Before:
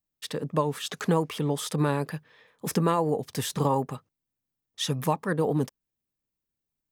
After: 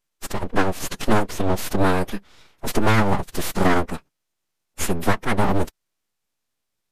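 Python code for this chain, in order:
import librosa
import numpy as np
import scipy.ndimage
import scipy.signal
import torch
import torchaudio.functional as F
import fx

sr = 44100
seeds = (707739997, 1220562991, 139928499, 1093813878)

y = np.abs(x)
y = fx.pitch_keep_formants(y, sr, semitones=-7.5)
y = y * librosa.db_to_amplitude(8.5)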